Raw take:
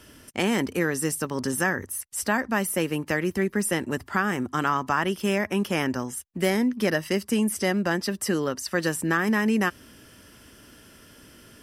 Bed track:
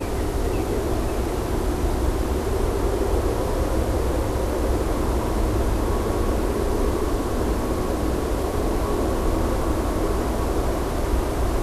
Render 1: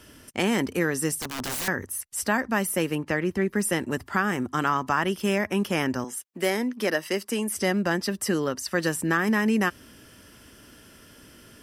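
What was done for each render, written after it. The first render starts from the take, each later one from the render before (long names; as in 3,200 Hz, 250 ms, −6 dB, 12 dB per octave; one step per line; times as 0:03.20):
0:01.21–0:01.68: wrap-around overflow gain 25 dB
0:02.95–0:03.48: low-pass filter 3,500 Hz 6 dB per octave
0:06.04–0:07.55: high-pass filter 290 Hz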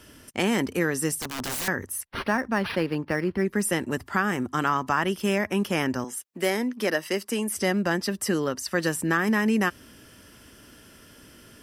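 0:02.07–0:03.45: linearly interpolated sample-rate reduction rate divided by 6×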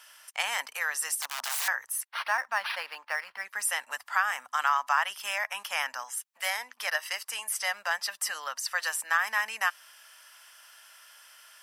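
inverse Chebyshev high-pass filter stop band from 390 Hz, stop band 40 dB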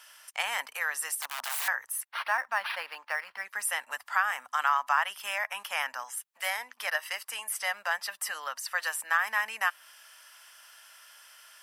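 dynamic equaliser 5,800 Hz, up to −6 dB, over −47 dBFS, Q 1.1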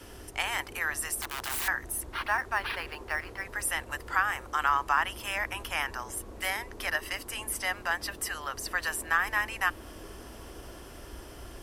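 mix in bed track −23 dB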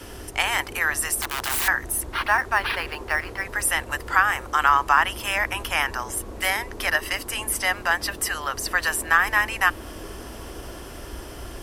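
level +8 dB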